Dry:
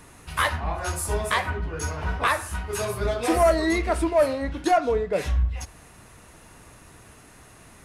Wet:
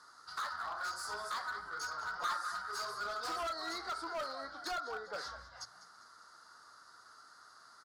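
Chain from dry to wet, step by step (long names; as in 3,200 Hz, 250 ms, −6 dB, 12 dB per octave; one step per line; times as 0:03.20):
pair of resonant band-passes 2,500 Hz, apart 1.8 octaves
on a send: echo with shifted repeats 199 ms, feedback 45%, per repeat +60 Hz, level −15 dB
on the sum: downward compressor 2 to 1, threshold −38 dBFS, peak gain reduction 7.5 dB
hard clipping −39 dBFS, distortion −8 dB
0:02.15–0:02.62: comb filter 5.7 ms, depth 82%
level +4 dB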